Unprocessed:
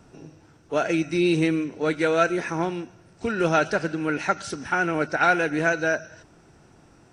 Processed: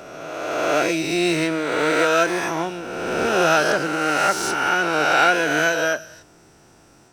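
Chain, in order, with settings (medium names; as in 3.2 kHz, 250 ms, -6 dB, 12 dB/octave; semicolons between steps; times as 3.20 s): reverse spectral sustain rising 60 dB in 1.94 s; tone controls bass -5 dB, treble +6 dB; harmony voices +12 st -13 dB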